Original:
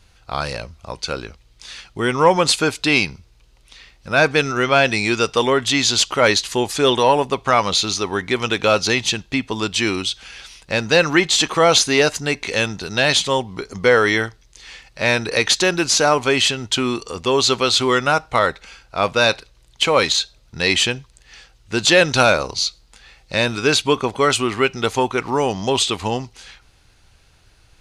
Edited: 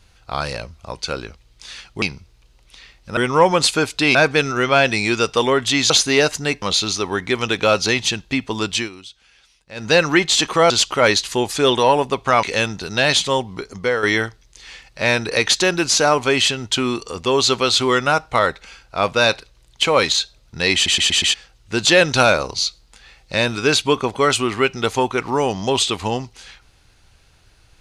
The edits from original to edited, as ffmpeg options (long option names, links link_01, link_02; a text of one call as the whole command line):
ffmpeg -i in.wav -filter_complex "[0:a]asplit=16[link_01][link_02][link_03][link_04][link_05][link_06][link_07][link_08][link_09][link_10][link_11][link_12][link_13][link_14][link_15][link_16];[link_01]atrim=end=2.022[link_17];[link_02]atrim=start=2.998:end=4.152[link_18];[link_03]atrim=start=2.018:end=3.002[link_19];[link_04]atrim=start=4.148:end=5.902[link_20];[link_05]atrim=start=11.708:end=12.432[link_21];[link_06]atrim=start=7.628:end=9.9,asetpts=PTS-STARTPTS,afade=type=out:start_time=2.142:duration=0.13:silence=0.158489[link_22];[link_07]atrim=start=9.9:end=10.76,asetpts=PTS-STARTPTS,volume=-16dB[link_23];[link_08]atrim=start=10.76:end=11.712,asetpts=PTS-STARTPTS,afade=type=in:duration=0.13:silence=0.158489[link_24];[link_09]atrim=start=5.898:end=7.632[link_25];[link_10]atrim=start=12.428:end=14.03,asetpts=PTS-STARTPTS,afade=type=out:start_time=1.102:duration=0.5:silence=0.354813[link_26];[link_11]atrim=start=14.03:end=20.862,asetpts=PTS-STARTPTS,afade=type=in:duration=0.004:curve=hsin:silence=0.354813[link_27];[link_12]atrim=start=20.738:end=20.862[link_28];[link_13]atrim=start=20.738:end=20.862[link_29];[link_14]atrim=start=20.738:end=20.862[link_30];[link_15]atrim=start=20.738:end=20.862[link_31];[link_16]atrim=start=21.338[link_32];[link_17][link_18]acrossfade=duration=0.004:curve1=hsin:curve2=hsin[link_33];[link_33][link_19]acrossfade=duration=0.004:curve1=hsin:curve2=hsin[link_34];[link_34][link_20]acrossfade=duration=0.004:curve1=hsin:curve2=hsin[link_35];[link_35][link_21]acrossfade=duration=0.004:curve1=hsin:curve2=hsin[link_36];[link_22][link_23][link_24]concat=n=3:v=0:a=1[link_37];[link_36][link_37]acrossfade=duration=0.004:curve1=hsin:curve2=hsin[link_38];[link_38][link_25]acrossfade=duration=0.004:curve1=hsin:curve2=hsin[link_39];[link_26][link_27]concat=n=2:v=0:a=1[link_40];[link_39][link_40]acrossfade=duration=0.004:curve1=hsin:curve2=hsin[link_41];[link_41][link_28]acrossfade=duration=0.004:curve1=hsin:curve2=hsin[link_42];[link_42][link_29]acrossfade=duration=0.004:curve1=hsin:curve2=hsin[link_43];[link_43][link_30]acrossfade=duration=0.004:curve1=hsin:curve2=hsin[link_44];[link_44][link_31]acrossfade=duration=0.004:curve1=hsin:curve2=hsin[link_45];[link_45][link_32]acrossfade=duration=0.004:curve1=hsin:curve2=hsin" out.wav